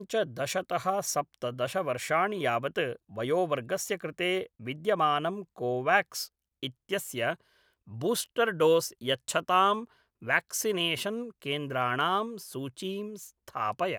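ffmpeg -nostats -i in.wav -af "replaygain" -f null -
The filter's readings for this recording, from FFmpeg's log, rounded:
track_gain = +9.0 dB
track_peak = 0.248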